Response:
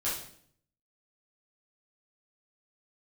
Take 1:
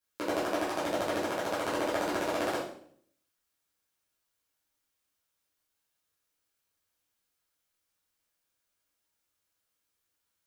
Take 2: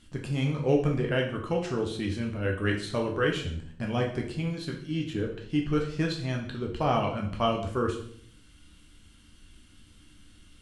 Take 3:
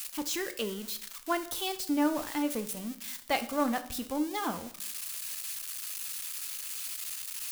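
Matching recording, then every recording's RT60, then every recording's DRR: 1; 0.60, 0.60, 0.60 seconds; −10.0, 0.0, 8.5 decibels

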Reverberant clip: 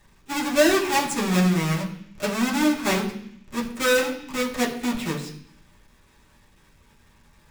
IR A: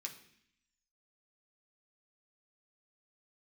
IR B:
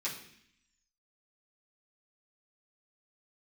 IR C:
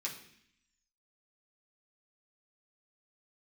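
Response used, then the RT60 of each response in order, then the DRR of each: C; 0.65, 0.65, 0.65 seconds; 0.5, −9.0, −4.5 decibels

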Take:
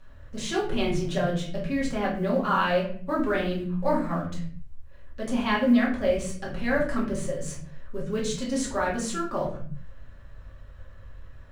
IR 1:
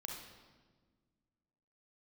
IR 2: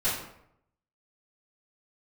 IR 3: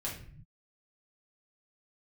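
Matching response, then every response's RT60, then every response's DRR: 3; 1.5, 0.75, 0.50 seconds; 0.0, −12.0, −5.5 decibels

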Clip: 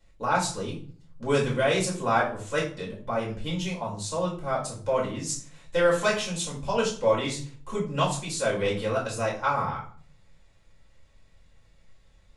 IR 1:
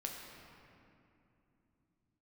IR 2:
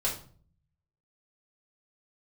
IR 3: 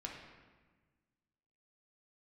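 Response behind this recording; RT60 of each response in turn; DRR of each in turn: 2; 2.9, 0.45, 1.4 seconds; 0.0, −5.5, −1.5 decibels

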